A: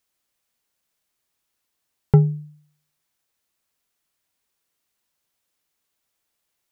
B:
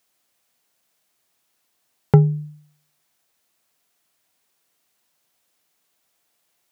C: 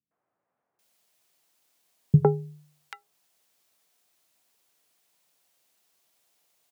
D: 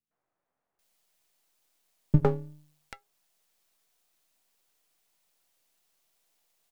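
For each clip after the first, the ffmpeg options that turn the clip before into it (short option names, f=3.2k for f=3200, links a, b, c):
-filter_complex "[0:a]highpass=110,equalizer=f=700:w=5.3:g=4.5,asplit=2[a][b];[b]acompressor=threshold=-23dB:ratio=6,volume=1.5dB[c];[a][c]amix=inputs=2:normalize=0"
-filter_complex "[0:a]highpass=98,bandreject=f=50:t=h:w=6,bandreject=f=100:t=h:w=6,bandreject=f=150:t=h:w=6,acrossover=split=240|1500[a][b][c];[b]adelay=110[d];[c]adelay=790[e];[a][d][e]amix=inputs=3:normalize=0"
-af "aeval=exprs='if(lt(val(0),0),0.251*val(0),val(0))':c=same"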